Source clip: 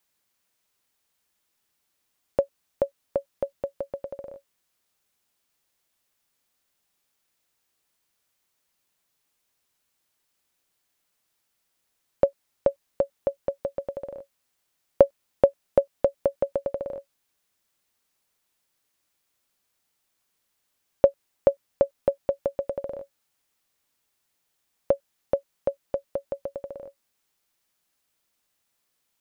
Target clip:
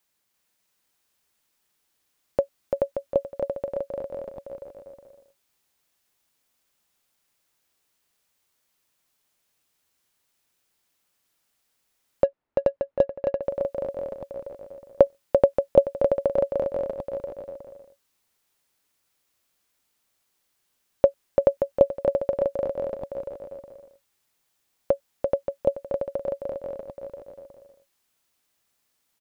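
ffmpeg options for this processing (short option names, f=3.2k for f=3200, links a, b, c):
-filter_complex "[0:a]aecho=1:1:340|578|744.6|861.2|942.9:0.631|0.398|0.251|0.158|0.1,asettb=1/sr,asplit=3[a][b][c];[a]atrim=end=12.244[d];[b]atrim=start=12.24:end=13.42,asetpts=PTS-STARTPTS,afade=t=in:d=0.004:c=qsin,afade=t=out:st=1.176:d=0.004:c=qsin,adynamicsmooth=sensitivity=2.5:basefreq=1.5k[e];[c]atrim=start=13.416[f];[d][e]acrossfade=d=0.004:c1=hsin:c2=qsin[g];[g][f]acrossfade=d=0.004:c1=qsin:c2=hsin"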